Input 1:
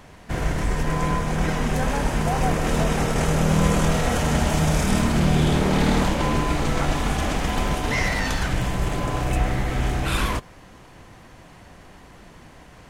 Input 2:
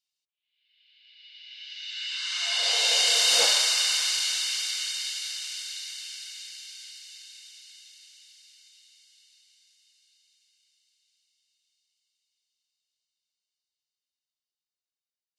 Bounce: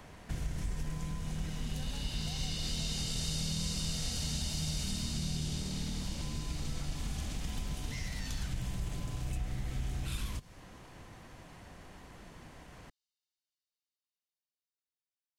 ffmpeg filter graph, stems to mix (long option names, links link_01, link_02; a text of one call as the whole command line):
ffmpeg -i stem1.wav -i stem2.wav -filter_complex "[0:a]acompressor=threshold=-26dB:ratio=6,volume=-5dB[link_01];[1:a]acompressor=threshold=-27dB:ratio=6,volume=-8dB[link_02];[link_01][link_02]amix=inputs=2:normalize=0,acrossover=split=210|3000[link_03][link_04][link_05];[link_04]acompressor=threshold=-52dB:ratio=5[link_06];[link_03][link_06][link_05]amix=inputs=3:normalize=0" out.wav